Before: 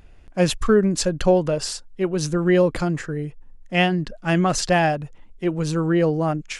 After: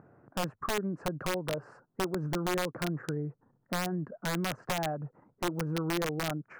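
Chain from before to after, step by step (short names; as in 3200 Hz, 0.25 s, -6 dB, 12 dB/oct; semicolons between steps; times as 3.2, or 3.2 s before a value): elliptic band-pass 120–1400 Hz, stop band 40 dB; compressor 5:1, threshold -32 dBFS, peak gain reduction 18 dB; wrapped overs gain 25.5 dB; gain +1.5 dB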